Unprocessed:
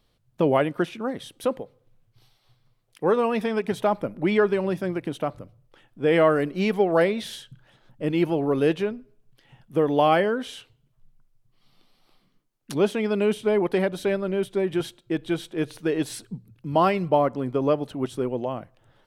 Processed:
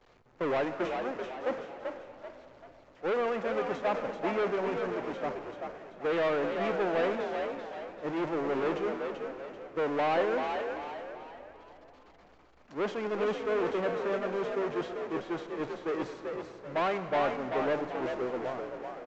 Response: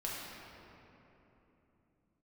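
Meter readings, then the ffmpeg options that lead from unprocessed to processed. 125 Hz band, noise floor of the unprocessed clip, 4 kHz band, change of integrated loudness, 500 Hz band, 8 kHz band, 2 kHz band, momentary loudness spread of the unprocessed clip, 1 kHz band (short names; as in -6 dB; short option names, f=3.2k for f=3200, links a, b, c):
-14.5 dB, -67 dBFS, -8.5 dB, -8.0 dB, -7.0 dB, under -10 dB, -4.5 dB, 11 LU, -5.5 dB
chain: -filter_complex "[0:a]aeval=exprs='val(0)+0.5*0.0794*sgn(val(0))':c=same,agate=range=-33dB:threshold=-16dB:ratio=3:detection=peak,equalizer=f=3.5k:w=1.2:g=-10,aresample=16000,asoftclip=type=tanh:threshold=-22.5dB,aresample=44100,acrossover=split=310 3900:gain=0.251 1 0.141[a][b][c];[a][b][c]amix=inputs=3:normalize=0,asplit=6[d][e][f][g][h][i];[e]adelay=387,afreqshift=53,volume=-5.5dB[j];[f]adelay=774,afreqshift=106,volume=-13.5dB[k];[g]adelay=1161,afreqshift=159,volume=-21.4dB[l];[h]adelay=1548,afreqshift=212,volume=-29.4dB[m];[i]adelay=1935,afreqshift=265,volume=-37.3dB[n];[d][j][k][l][m][n]amix=inputs=6:normalize=0,asplit=2[o][p];[1:a]atrim=start_sample=2205,adelay=118[q];[p][q]afir=irnorm=-1:irlink=0,volume=-15dB[r];[o][r]amix=inputs=2:normalize=0,volume=-2.5dB"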